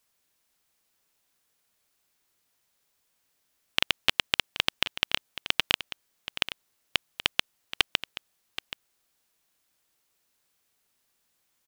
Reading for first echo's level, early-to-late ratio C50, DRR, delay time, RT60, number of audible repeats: -13.0 dB, no reverb, no reverb, 777 ms, no reverb, 1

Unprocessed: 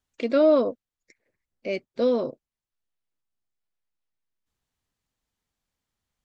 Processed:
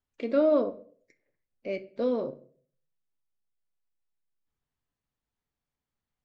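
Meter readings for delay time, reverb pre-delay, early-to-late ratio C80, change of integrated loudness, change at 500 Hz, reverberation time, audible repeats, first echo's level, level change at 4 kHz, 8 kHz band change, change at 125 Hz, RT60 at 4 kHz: no echo, 5 ms, 20.0 dB, -4.5 dB, -4.5 dB, 0.50 s, no echo, no echo, -9.5 dB, no reading, -3.5 dB, 0.35 s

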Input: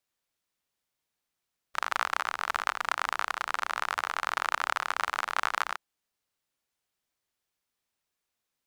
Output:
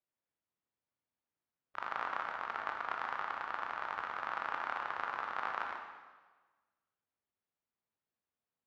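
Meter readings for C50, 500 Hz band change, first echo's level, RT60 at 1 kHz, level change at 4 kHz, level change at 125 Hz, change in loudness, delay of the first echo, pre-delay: 4.0 dB, -5.0 dB, no echo, 1.3 s, -15.0 dB, no reading, -8.0 dB, no echo, 14 ms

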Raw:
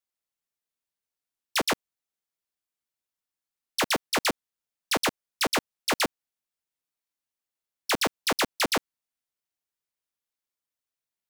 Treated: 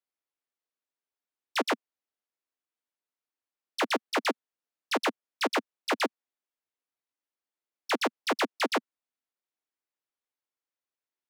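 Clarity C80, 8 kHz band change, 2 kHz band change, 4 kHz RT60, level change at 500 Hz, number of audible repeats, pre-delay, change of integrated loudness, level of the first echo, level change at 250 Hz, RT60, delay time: no reverb, -10.5 dB, -2.5 dB, no reverb, 0.0 dB, no echo, no reverb, -3.0 dB, no echo, -1.0 dB, no reverb, no echo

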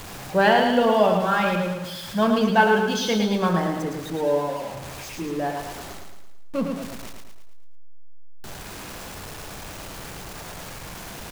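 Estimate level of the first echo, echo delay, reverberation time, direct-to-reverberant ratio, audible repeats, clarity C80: -5.0 dB, 110 ms, no reverb, no reverb, 5, no reverb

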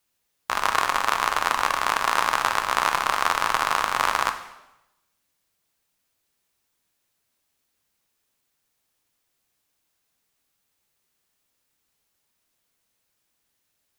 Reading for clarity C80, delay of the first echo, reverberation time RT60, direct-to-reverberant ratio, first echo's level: 13.0 dB, no echo, 0.95 s, 6.5 dB, no echo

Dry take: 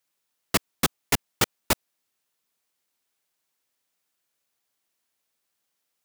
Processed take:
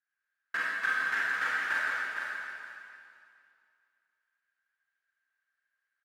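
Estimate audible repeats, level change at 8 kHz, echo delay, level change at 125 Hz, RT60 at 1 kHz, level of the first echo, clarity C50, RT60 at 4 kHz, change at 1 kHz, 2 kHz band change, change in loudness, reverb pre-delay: 1, -22.0 dB, 458 ms, under -25 dB, 2.5 s, -5.0 dB, -5.5 dB, 2.4 s, -3.0 dB, +6.5 dB, -4.0 dB, 15 ms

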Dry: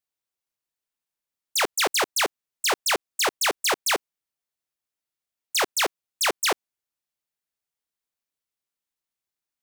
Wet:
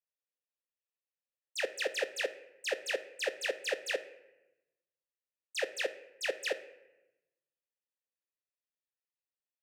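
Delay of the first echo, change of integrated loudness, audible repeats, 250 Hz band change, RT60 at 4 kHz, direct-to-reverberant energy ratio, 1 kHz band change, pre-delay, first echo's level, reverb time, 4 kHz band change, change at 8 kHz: no echo, -12.0 dB, no echo, -15.0 dB, 0.65 s, 10.5 dB, -21.5 dB, 3 ms, no echo, 1.0 s, -14.0 dB, -18.5 dB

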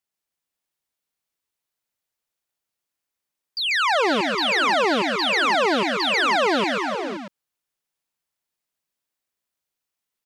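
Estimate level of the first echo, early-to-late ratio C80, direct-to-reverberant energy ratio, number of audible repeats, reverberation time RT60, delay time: -4.0 dB, no reverb, no reverb, 4, no reverb, 140 ms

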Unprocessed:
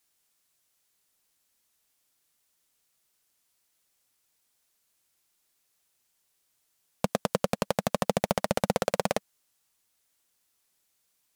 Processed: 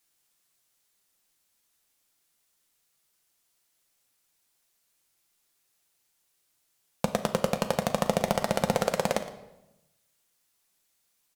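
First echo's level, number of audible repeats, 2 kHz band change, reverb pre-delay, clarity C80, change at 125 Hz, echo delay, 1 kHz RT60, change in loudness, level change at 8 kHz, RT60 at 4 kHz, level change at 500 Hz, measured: -16.5 dB, 1, +1.0 dB, 6 ms, 12.5 dB, +1.0 dB, 115 ms, 0.90 s, +1.0 dB, +1.0 dB, 0.75 s, +1.0 dB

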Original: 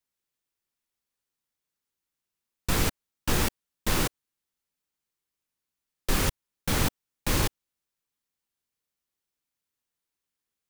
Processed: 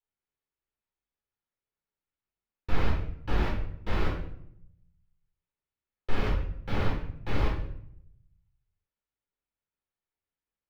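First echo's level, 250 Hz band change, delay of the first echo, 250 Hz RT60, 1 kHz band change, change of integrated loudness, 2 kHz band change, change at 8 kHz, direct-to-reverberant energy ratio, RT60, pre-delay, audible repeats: no echo, -3.5 dB, no echo, 1.0 s, -3.0 dB, -4.0 dB, -5.5 dB, -27.5 dB, -3.5 dB, 0.70 s, 10 ms, no echo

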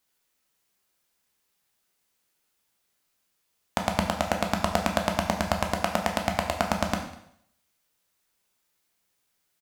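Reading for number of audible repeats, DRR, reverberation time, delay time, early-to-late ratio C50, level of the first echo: 1, 2.5 dB, 0.70 s, 199 ms, 7.5 dB, -22.0 dB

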